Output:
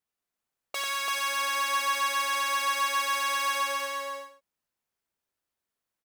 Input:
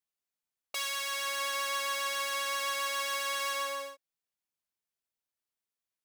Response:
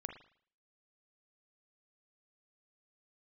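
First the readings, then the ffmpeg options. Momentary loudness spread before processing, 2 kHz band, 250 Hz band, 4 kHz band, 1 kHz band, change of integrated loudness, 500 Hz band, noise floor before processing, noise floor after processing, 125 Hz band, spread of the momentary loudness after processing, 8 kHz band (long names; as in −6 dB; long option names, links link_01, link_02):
5 LU, +5.0 dB, +7.5 dB, +3.0 dB, +7.5 dB, +5.0 dB, +1.0 dB, below −85 dBFS, below −85 dBFS, can't be measured, 8 LU, +3.0 dB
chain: -filter_complex "[0:a]acrossover=split=2000[link_01][link_02];[link_01]acontrast=51[link_03];[link_03][link_02]amix=inputs=2:normalize=0,aecho=1:1:93|338|438:0.501|0.668|0.168"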